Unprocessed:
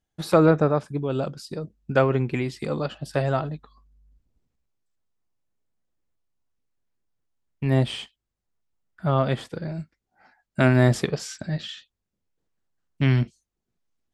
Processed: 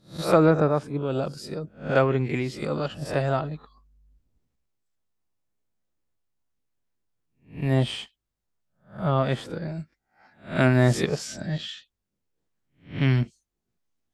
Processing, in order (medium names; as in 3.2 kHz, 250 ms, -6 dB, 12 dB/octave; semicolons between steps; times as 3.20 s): reverse spectral sustain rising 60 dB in 0.34 s; trim -1.5 dB